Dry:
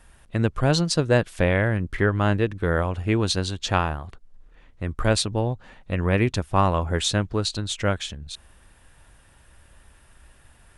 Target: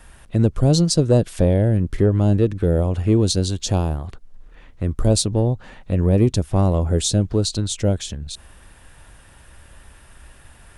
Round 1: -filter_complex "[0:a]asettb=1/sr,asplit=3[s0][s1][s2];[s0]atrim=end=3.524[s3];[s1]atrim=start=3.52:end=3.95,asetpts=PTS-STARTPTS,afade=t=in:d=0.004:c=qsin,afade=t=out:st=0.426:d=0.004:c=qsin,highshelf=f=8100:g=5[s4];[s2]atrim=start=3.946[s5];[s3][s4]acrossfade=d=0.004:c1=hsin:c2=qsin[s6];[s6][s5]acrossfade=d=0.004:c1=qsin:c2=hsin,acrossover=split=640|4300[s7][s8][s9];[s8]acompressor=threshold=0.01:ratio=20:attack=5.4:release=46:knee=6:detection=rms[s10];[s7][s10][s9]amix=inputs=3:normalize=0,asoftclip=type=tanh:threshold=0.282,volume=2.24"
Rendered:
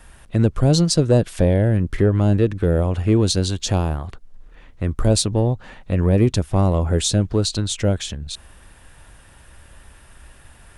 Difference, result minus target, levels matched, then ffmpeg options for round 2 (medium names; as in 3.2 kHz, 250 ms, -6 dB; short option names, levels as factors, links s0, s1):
compression: peak gain reduction -7.5 dB
-filter_complex "[0:a]asettb=1/sr,asplit=3[s0][s1][s2];[s0]atrim=end=3.524[s3];[s1]atrim=start=3.52:end=3.95,asetpts=PTS-STARTPTS,afade=t=in:d=0.004:c=qsin,afade=t=out:st=0.426:d=0.004:c=qsin,highshelf=f=8100:g=5[s4];[s2]atrim=start=3.946[s5];[s3][s4]acrossfade=d=0.004:c1=hsin:c2=qsin[s6];[s6][s5]acrossfade=d=0.004:c1=qsin:c2=hsin,acrossover=split=640|4300[s7][s8][s9];[s8]acompressor=threshold=0.00398:ratio=20:attack=5.4:release=46:knee=6:detection=rms[s10];[s7][s10][s9]amix=inputs=3:normalize=0,asoftclip=type=tanh:threshold=0.282,volume=2.24"